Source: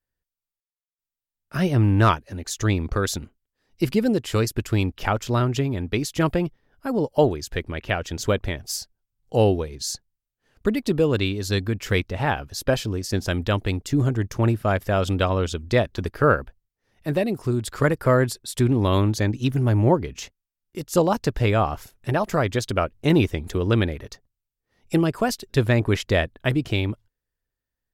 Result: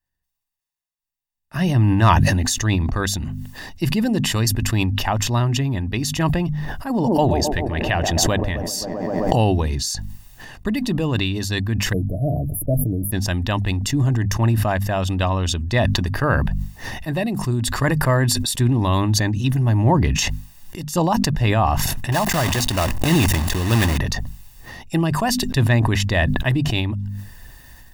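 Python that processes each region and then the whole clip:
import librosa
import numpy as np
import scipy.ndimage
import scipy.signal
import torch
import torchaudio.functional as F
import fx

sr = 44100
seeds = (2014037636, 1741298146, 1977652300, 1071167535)

y = fx.chain(x, sr, fx.echo_wet_bandpass(ms=131, feedback_pct=71, hz=410.0, wet_db=-9.0),
    fx.pre_swell(db_per_s=22.0), at=(6.9, 9.47))
y = fx.chain(y, sr, fx.brickwall_bandstop(low_hz=720.0, high_hz=9600.0),
    fx.comb(ms=6.6, depth=0.48), at=(11.93, 13.12))
y = fx.chain(y, sr, fx.block_float(bits=3),
    fx.pre_swell(db_per_s=90.0), at=(22.12, 23.98))
y = fx.hum_notches(y, sr, base_hz=50, count=5)
y = y + 0.61 * np.pad(y, (int(1.1 * sr / 1000.0), 0))[:len(y)]
y = fx.sustainer(y, sr, db_per_s=22.0)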